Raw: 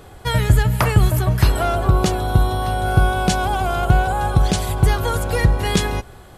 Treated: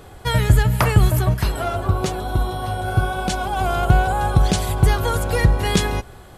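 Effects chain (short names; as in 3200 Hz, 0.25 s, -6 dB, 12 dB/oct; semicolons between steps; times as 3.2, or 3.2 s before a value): 1.34–3.57 flange 1 Hz, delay 2.7 ms, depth 8.9 ms, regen +37%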